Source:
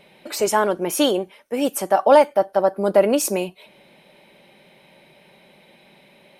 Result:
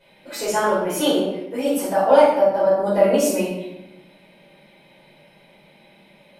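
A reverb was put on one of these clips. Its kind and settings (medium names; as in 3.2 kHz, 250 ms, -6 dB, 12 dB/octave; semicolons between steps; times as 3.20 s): simulated room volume 310 m³, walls mixed, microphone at 4.9 m; trim -13 dB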